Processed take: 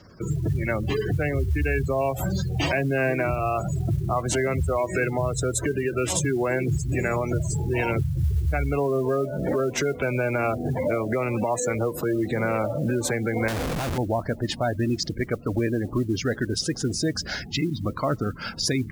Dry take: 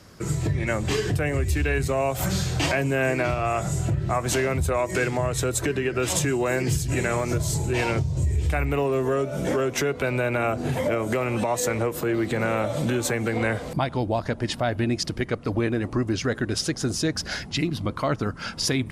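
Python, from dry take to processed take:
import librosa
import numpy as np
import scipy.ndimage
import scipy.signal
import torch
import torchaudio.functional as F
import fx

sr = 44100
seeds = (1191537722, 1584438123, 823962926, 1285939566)

y = fx.spec_gate(x, sr, threshold_db=-20, keep='strong')
y = fx.schmitt(y, sr, flips_db=-38.0, at=(13.48, 13.98))
y = fx.mod_noise(y, sr, seeds[0], snr_db=31)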